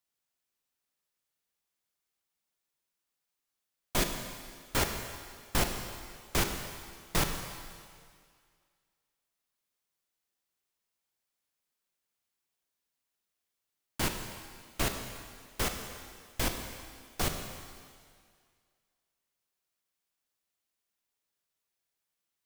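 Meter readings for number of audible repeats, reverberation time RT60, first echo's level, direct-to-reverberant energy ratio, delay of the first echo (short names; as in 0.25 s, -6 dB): none, 2.0 s, none, 4.5 dB, none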